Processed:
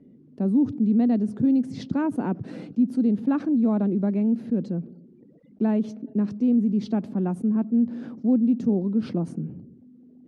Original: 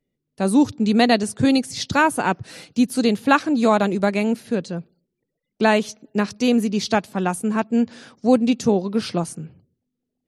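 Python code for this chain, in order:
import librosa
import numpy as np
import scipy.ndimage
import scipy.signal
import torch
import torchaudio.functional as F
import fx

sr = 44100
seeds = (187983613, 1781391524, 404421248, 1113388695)

y = fx.bandpass_q(x, sr, hz=240.0, q=2.4)
y = fx.env_flatten(y, sr, amount_pct=50)
y = y * librosa.db_to_amplitude(-3.5)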